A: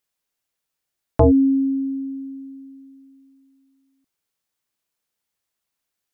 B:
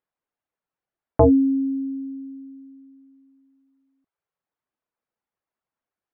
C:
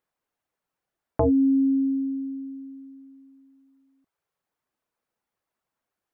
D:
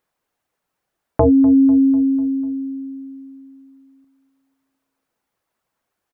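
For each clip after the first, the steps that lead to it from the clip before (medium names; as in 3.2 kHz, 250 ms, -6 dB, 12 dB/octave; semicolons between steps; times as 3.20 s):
reverb removal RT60 0.53 s; low-pass 1.2 kHz 12 dB/octave; tilt EQ +1.5 dB/octave; trim +2.5 dB
peak limiter -16 dBFS, peak gain reduction 10.5 dB; compression, threshold -22 dBFS, peak gain reduction 4.5 dB; trim +4.5 dB
feedback delay 248 ms, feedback 55%, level -16 dB; trim +7.5 dB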